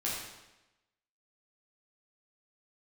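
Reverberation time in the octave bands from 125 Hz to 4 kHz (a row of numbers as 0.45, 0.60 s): 1.0, 1.0, 1.0, 1.0, 0.95, 0.90 s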